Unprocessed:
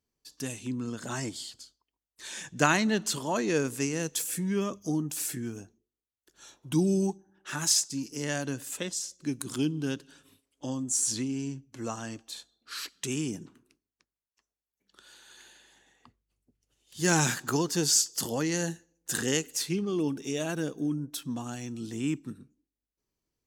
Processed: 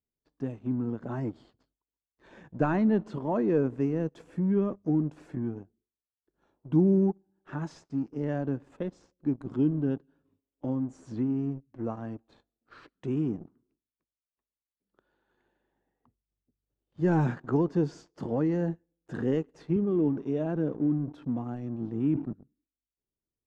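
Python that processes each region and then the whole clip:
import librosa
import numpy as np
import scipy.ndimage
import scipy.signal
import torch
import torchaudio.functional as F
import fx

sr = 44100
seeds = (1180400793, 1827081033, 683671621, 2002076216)

y = fx.chain(x, sr, fx.highpass(hz=67.0, slope=24),
    fx.sustainer(db_per_s=110.0), at=(19.76, 22.33))
y = fx.leveller(y, sr, passes=2)
y = scipy.signal.sosfilt(scipy.signal.bessel(2, 630.0, 'lowpass', norm='mag', fs=sr, output='sos'), y)
y = y * 10.0 ** (-3.5 / 20.0)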